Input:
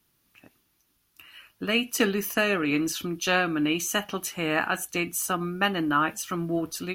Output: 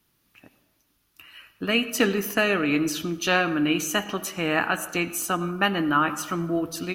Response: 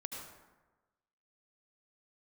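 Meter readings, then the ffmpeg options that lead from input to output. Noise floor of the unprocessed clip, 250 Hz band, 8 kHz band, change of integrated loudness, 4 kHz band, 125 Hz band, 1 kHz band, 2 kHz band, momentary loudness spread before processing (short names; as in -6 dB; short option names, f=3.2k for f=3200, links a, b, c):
-70 dBFS, +2.5 dB, 0.0 dB, +2.0 dB, +1.5 dB, +2.0 dB, +2.0 dB, +2.0 dB, 6 LU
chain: -filter_complex "[0:a]asplit=2[a][b];[1:a]atrim=start_sample=2205,lowpass=6.1k[c];[b][c]afir=irnorm=-1:irlink=0,volume=-7.5dB[d];[a][d]amix=inputs=2:normalize=0"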